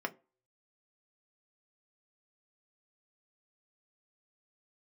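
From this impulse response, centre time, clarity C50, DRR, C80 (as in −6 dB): 4 ms, 22.0 dB, 4.0 dB, 27.0 dB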